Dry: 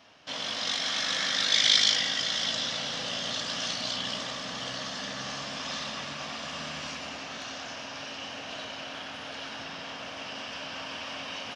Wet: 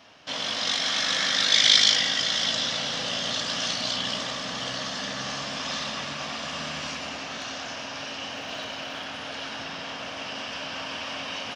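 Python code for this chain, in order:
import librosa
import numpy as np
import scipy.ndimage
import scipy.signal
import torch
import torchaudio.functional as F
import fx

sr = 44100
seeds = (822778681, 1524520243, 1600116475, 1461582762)

y = fx.dmg_crackle(x, sr, seeds[0], per_s=120.0, level_db=-49.0, at=(8.34, 9.04), fade=0.02)
y = y * librosa.db_to_amplitude(4.0)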